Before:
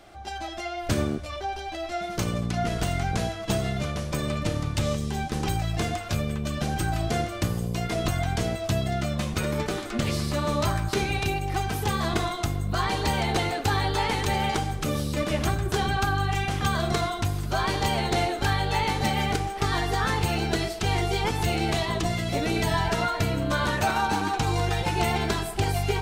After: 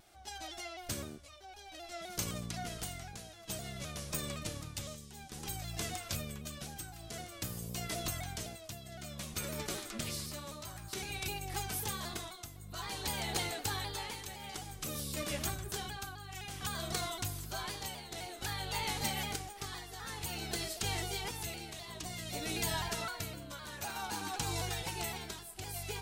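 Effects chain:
shaped tremolo triangle 0.54 Hz, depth 75%
first-order pre-emphasis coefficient 0.8
pitch modulation by a square or saw wave saw down 3.9 Hz, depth 100 cents
level +1 dB

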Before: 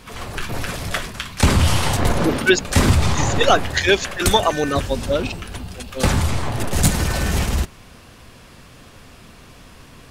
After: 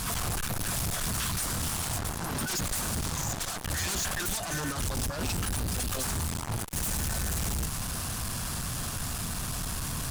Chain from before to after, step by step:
in parallel at −3 dB: sine wavefolder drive 16 dB, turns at −2 dBFS
on the sum: flat-topped bell 1,000 Hz +11.5 dB
compressor whose output falls as the input rises −8 dBFS, ratio −1
drawn EQ curve 160 Hz 0 dB, 570 Hz −16 dB, 1,500 Hz −14 dB, 9,500 Hz +9 dB
tube saturation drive 22 dB, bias 0.25
level −7 dB

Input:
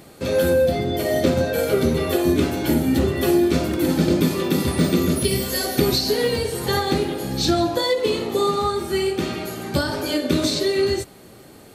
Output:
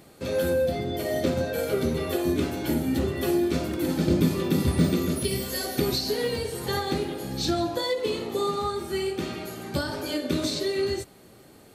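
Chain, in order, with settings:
0:04.07–0:04.94: low-shelf EQ 180 Hz +9.5 dB
level −6.5 dB

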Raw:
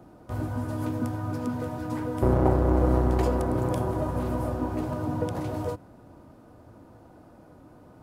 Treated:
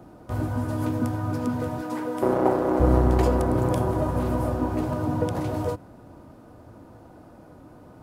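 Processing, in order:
0:01.81–0:02.80: high-pass filter 270 Hz 12 dB per octave
level +3.5 dB

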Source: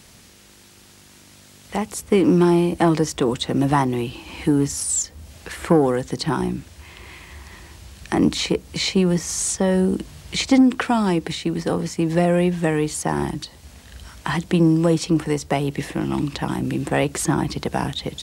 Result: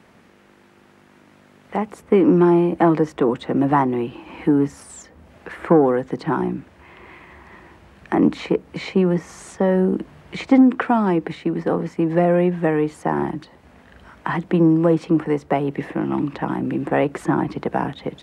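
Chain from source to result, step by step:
three-way crossover with the lows and the highs turned down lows −14 dB, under 160 Hz, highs −22 dB, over 2,200 Hz
level +2.5 dB

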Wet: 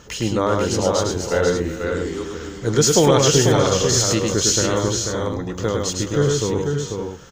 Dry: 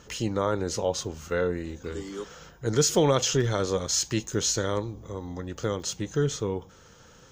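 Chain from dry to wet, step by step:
multi-tap delay 105/128/368/491/568 ms −3.5/−12.5/−15/−5/−8.5 dB
level +6 dB

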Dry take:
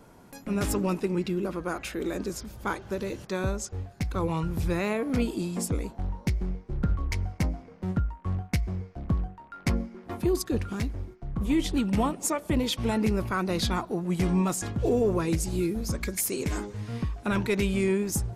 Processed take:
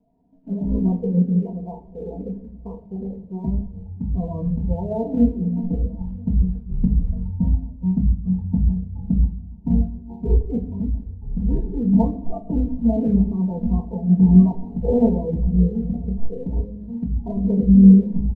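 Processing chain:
stylus tracing distortion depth 0.064 ms
Butterworth low-pass 840 Hz 72 dB per octave
mains-hum notches 50/100/150/200 Hz
formants moved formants +3 semitones
comb filter 4.4 ms, depth 100%
in parallel at −4 dB: log-companded quantiser 4 bits
on the sum: parametric band 110 Hz +11 dB 1.6 octaves
on a send: single-tap delay 983 ms −21.5 dB
on the sum: rectangular room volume 330 cubic metres, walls mixed, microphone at 0.75 metres
every bin expanded away from the loudest bin 1.5 to 1
level −2 dB

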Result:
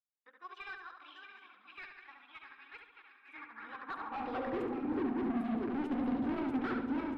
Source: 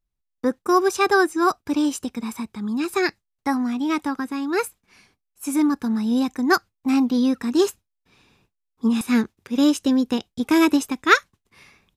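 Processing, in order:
feedback delay that plays each chunk backwards 531 ms, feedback 74%, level −9.5 dB
parametric band 4,700 Hz −8.5 dB 1.8 octaves
hum removal 87.51 Hz, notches 9
time stretch by overlap-add 0.6×, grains 41 ms
high-pass filter sweep 3,100 Hz → 61 Hz, 0:03.13–0:06.26
brickwall limiter −16 dBFS, peak gain reduction 11 dB
low-pass that shuts in the quiet parts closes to 2,500 Hz, open at −21.5 dBFS
hard clipping −32.5 dBFS, distortion −4 dB
high-frequency loss of the air 400 metres
feedback echo with a low-pass in the loop 71 ms, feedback 50%, low-pass 4,100 Hz, level −4 dB
expander for the loud parts 1.5 to 1, over −44 dBFS

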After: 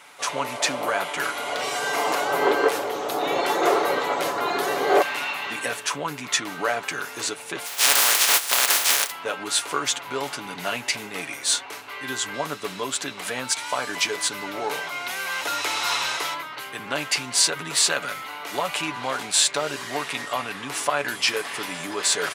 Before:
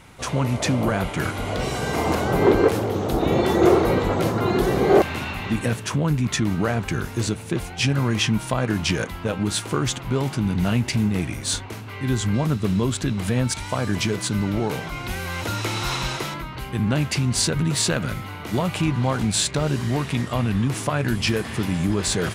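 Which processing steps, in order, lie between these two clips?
0:07.65–0:09.10: compressing power law on the bin magnitudes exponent 0.17
high-pass filter 650 Hz 12 dB per octave
comb filter 7 ms, depth 47%
level +2.5 dB

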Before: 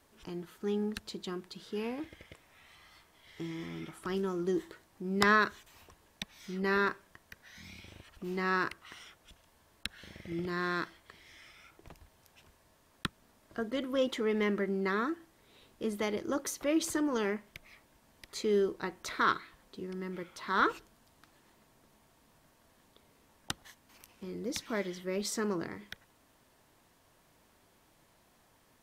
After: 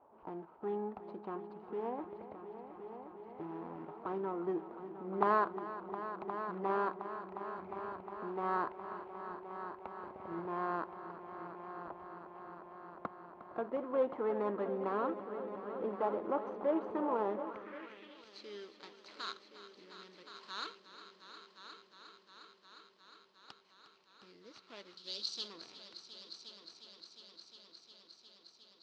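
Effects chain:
running median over 25 samples
0:24.97–0:25.48: high shelf with overshoot 2,800 Hz +13 dB, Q 3
in parallel at +2 dB: downward compressor, threshold −47 dBFS, peak gain reduction 21 dB
on the sum: head-to-tape spacing loss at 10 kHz 24 dB
on a send: echo machine with several playback heads 357 ms, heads all three, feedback 72%, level −14.5 dB
on the sum: band-pass filter sweep 870 Hz → 4,600 Hz, 0:17.43–0:18.26
level +8.5 dB

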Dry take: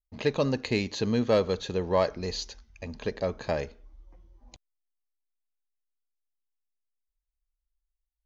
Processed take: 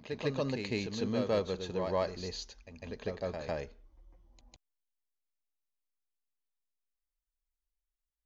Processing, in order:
backwards echo 152 ms −5.5 dB
level −7.5 dB

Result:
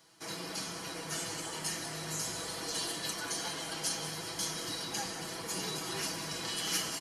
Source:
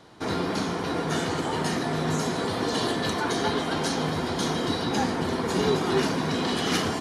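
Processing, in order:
first-order pre-emphasis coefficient 0.9
notch filter 3,700 Hz, Q 6.1
comb filter 6.1 ms, depth 72%
echo with shifted repeats 187 ms, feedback 46%, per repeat −47 Hz, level −11.5 dB

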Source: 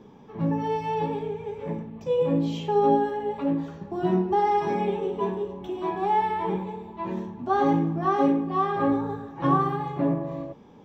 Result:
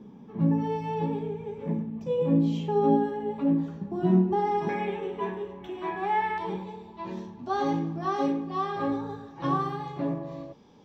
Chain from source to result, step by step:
parametric band 210 Hz +11.5 dB 1.1 octaves, from 0:04.69 1,900 Hz, from 0:06.38 4,800 Hz
level −5.5 dB

